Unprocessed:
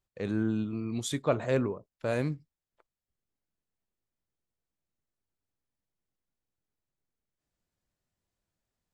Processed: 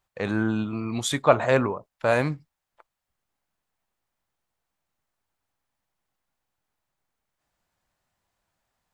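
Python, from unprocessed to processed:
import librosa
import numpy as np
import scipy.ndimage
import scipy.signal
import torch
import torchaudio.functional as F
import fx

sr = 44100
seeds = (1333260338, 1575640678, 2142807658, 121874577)

y = fx.curve_eq(x, sr, hz=(420.0, 820.0, 5400.0), db=(0, 11, 3))
y = y * librosa.db_to_amplitude(4.0)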